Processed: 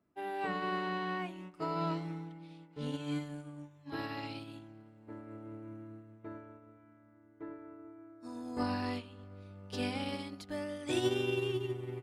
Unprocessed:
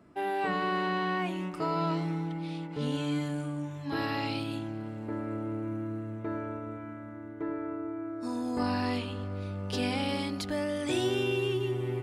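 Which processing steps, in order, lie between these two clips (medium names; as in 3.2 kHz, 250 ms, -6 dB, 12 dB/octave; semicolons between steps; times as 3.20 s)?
upward expansion 2.5:1, over -39 dBFS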